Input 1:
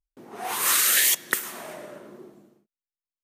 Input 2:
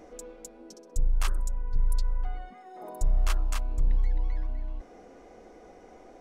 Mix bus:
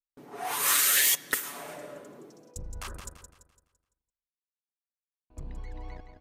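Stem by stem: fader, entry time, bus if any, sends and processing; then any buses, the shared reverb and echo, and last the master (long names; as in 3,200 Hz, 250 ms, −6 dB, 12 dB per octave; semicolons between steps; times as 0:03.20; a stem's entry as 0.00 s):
−4.0 dB, 0.00 s, no send, no echo send, noise gate with hold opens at −45 dBFS; comb filter 7 ms, depth 64%
+2.5 dB, 1.60 s, muted 0:03.26–0:05.30, no send, echo send −8 dB, high-pass filter 75 Hz 12 dB per octave; output level in coarse steps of 20 dB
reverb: not used
echo: repeating echo 169 ms, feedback 40%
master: hard clipping −16 dBFS, distortion −21 dB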